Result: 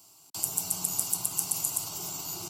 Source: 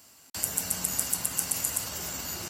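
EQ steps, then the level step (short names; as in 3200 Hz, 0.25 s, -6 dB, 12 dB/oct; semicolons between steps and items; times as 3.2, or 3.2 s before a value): fixed phaser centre 350 Hz, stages 8; 0.0 dB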